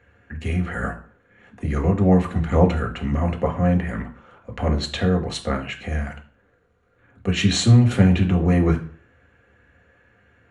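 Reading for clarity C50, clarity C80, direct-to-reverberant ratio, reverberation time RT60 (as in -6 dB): 12.5 dB, 17.0 dB, 1.5 dB, 0.45 s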